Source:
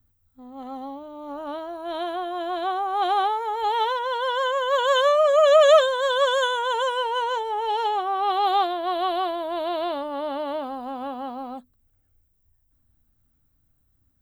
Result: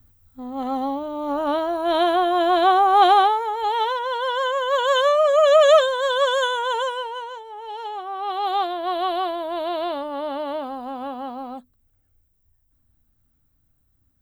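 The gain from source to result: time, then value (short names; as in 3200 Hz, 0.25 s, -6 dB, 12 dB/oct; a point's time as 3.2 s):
2.98 s +10 dB
3.55 s +1 dB
6.77 s +1 dB
7.43 s -11 dB
8.87 s +1 dB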